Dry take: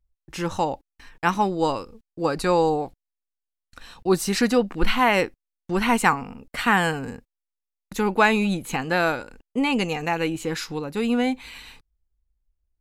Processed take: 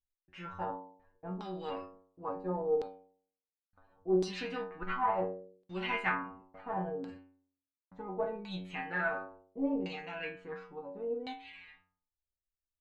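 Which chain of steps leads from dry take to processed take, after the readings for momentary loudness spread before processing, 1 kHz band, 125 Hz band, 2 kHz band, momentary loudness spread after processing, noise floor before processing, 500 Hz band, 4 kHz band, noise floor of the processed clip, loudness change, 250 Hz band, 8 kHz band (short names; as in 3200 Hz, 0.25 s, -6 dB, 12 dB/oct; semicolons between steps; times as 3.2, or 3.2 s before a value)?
13 LU, -13.5 dB, -14.5 dB, -14.0 dB, 16 LU, -85 dBFS, -11.5 dB, -17.0 dB, under -85 dBFS, -13.5 dB, -15.0 dB, under -25 dB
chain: metallic resonator 91 Hz, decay 0.6 s, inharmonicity 0.002; added harmonics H 4 -18 dB, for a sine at -17 dBFS; LFO low-pass saw down 0.71 Hz 420–4200 Hz; gain -4 dB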